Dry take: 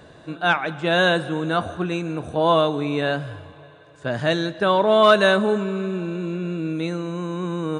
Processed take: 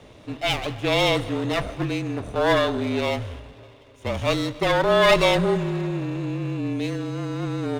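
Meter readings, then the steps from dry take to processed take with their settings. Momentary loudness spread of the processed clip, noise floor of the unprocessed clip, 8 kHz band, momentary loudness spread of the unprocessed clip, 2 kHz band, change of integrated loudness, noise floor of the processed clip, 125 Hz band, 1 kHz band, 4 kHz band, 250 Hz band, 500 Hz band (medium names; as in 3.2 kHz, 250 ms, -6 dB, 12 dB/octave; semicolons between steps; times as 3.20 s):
11 LU, -48 dBFS, no reading, 12 LU, -3.0 dB, -2.0 dB, -48 dBFS, +1.0 dB, -3.5 dB, +0.5 dB, -1.5 dB, -2.0 dB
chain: comb filter that takes the minimum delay 0.31 ms; frequency shift -33 Hz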